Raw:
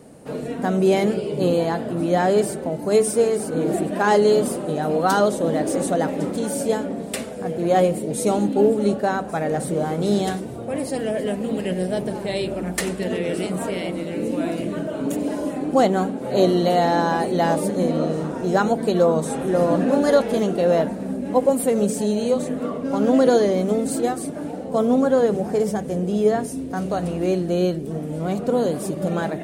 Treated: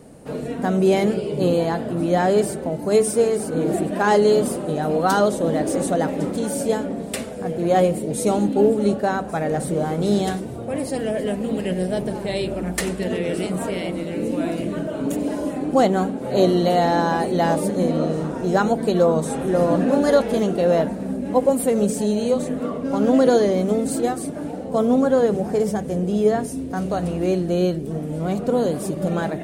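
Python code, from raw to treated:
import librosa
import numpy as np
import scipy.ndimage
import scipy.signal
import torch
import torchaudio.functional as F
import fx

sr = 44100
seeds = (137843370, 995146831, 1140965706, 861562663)

y = fx.low_shelf(x, sr, hz=68.0, db=9.5)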